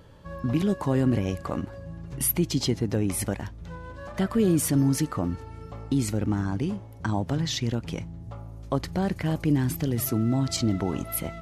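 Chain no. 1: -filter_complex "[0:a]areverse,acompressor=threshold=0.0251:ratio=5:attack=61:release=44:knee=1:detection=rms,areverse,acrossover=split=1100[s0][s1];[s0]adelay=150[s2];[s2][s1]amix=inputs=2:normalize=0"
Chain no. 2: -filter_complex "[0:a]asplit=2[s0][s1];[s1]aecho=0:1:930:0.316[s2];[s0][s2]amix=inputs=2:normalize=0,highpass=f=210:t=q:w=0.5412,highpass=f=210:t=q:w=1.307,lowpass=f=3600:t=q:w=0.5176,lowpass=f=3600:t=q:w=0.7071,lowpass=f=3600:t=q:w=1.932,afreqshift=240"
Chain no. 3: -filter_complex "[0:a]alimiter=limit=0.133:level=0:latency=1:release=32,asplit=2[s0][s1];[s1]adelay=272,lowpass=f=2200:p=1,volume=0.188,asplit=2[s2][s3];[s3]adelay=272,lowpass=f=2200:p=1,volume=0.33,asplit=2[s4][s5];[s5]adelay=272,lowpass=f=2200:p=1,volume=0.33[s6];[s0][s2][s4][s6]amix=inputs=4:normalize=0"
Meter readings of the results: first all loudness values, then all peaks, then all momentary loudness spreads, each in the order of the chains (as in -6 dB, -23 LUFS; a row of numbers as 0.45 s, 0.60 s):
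-32.5 LUFS, -30.0 LUFS, -28.5 LUFS; -15.5 dBFS, -13.0 dBFS, -16.0 dBFS; 11 LU, 12 LU, 13 LU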